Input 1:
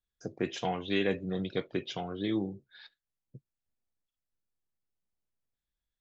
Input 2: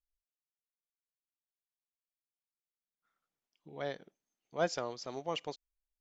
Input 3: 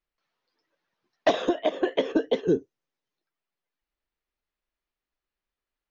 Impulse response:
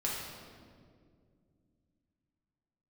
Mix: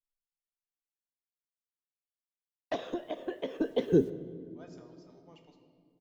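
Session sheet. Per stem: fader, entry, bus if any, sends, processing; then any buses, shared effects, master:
mute
-18.5 dB, 0.00 s, send -5 dB, feedback comb 310 Hz, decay 0.17 s, harmonics all, mix 70%
3.42 s -15 dB -> 4.08 s -2.5 dB, 1.45 s, send -15.5 dB, bit crusher 10-bit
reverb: on, RT60 2.1 s, pre-delay 4 ms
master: bass shelf 220 Hz +9 dB

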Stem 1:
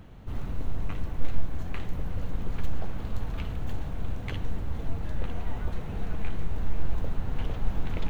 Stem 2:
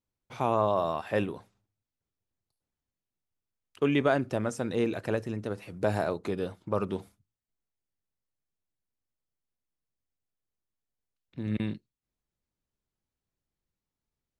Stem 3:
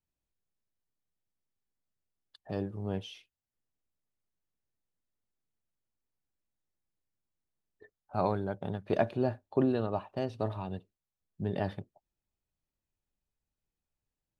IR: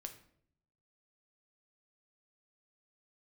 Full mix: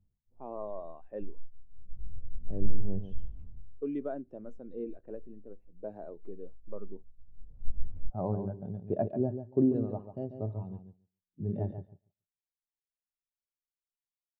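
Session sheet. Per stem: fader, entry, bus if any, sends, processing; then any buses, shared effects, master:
-8.0 dB, 0.00 s, send -22.5 dB, no echo send, detune thickener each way 53 cents; auto duck -21 dB, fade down 0.25 s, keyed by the second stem
-7.0 dB, 0.00 s, send -18 dB, no echo send, high-pass 210 Hz 12 dB/octave; level-controlled noise filter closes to 350 Hz, open at -27 dBFS
0.0 dB, 0.00 s, no send, echo send -6.5 dB, none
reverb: on, RT60 0.65 s, pre-delay 7 ms
echo: feedback delay 141 ms, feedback 22%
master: tilt shelf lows +6 dB, about 890 Hz; spectral contrast expander 1.5:1

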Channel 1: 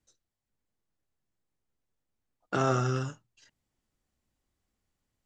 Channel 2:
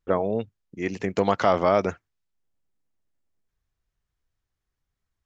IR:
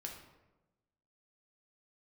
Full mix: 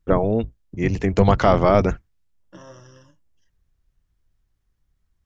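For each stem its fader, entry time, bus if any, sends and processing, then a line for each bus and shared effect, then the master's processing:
-18.0 dB, 0.00 s, no send, rippled EQ curve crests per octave 1.2, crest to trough 18 dB
+3.0 dB, 0.00 s, no send, octave divider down 1 oct, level -2 dB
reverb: none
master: bass shelf 160 Hz +10 dB

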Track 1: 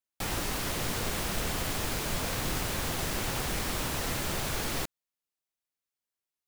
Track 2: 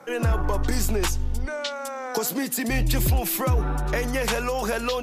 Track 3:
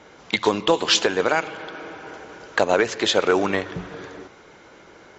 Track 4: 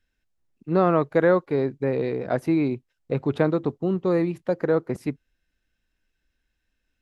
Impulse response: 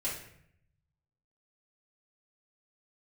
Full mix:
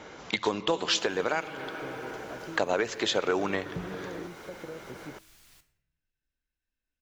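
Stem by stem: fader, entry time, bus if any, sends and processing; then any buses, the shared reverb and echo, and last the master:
-18.5 dB, 0.75 s, send -8 dB, amplifier tone stack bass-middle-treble 5-5-5
mute
+1.0 dB, 0.00 s, no send, gain riding within 3 dB 2 s
-13.0 dB, 0.00 s, no send, compression, threshold -21 dBFS, peak gain reduction 7.5 dB; de-hum 106 Hz, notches 36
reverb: on, RT60 0.70 s, pre-delay 3 ms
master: compression 1.5:1, threshold -42 dBFS, peak gain reduction 11 dB

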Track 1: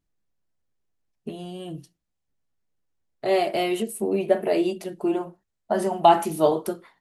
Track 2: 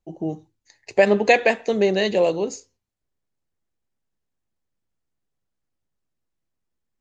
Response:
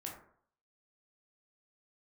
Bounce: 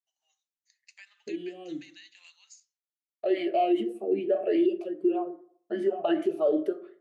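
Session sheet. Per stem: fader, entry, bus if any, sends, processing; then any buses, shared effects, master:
+2.0 dB, 0.00 s, send -6 dB, gate with hold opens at -43 dBFS; small resonant body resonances 350/1700 Hz, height 7 dB; talking filter a-i 2.5 Hz
-13.0 dB, 0.00 s, send -16 dB, Bessel high-pass 2.4 kHz, order 6; compression 10:1, threshold -36 dBFS, peak gain reduction 18 dB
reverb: on, RT60 0.60 s, pre-delay 12 ms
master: peak limiter -16.5 dBFS, peak gain reduction 9 dB

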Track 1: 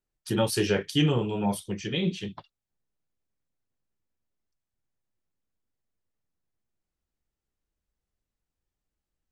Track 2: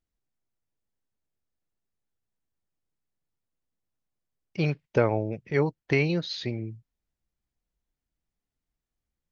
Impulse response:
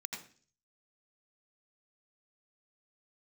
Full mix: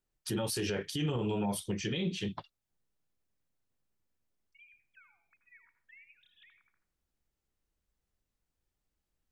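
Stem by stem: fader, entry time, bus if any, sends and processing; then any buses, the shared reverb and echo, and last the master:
+1.0 dB, 0.00 s, no send, compression 3:1, threshold -26 dBFS, peak gain reduction 6 dB
-20.0 dB, 0.00 s, send -3 dB, formants replaced by sine waves; inverse Chebyshev high-pass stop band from 550 Hz, stop band 50 dB; compression 4:1, threshold -42 dBFS, peak gain reduction 14.5 dB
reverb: on, RT60 0.45 s, pre-delay 79 ms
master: peak limiter -24.5 dBFS, peak gain reduction 9.5 dB

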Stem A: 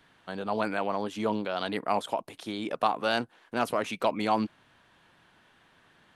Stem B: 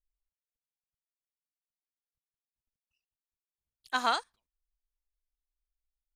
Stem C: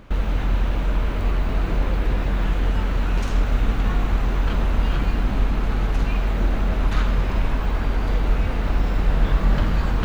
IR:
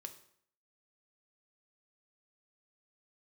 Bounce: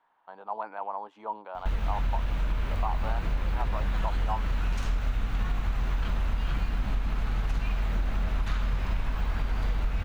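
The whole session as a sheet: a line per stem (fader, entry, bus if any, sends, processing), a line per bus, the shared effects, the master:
+2.0 dB, 0.00 s, no send, band-pass filter 900 Hz, Q 4.1
-16.0 dB, 0.00 s, no send, none
-3.5 dB, 1.55 s, no send, peaking EQ 360 Hz -8 dB 1.7 oct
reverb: none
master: compression, threshold -23 dBFS, peak gain reduction 7.5 dB

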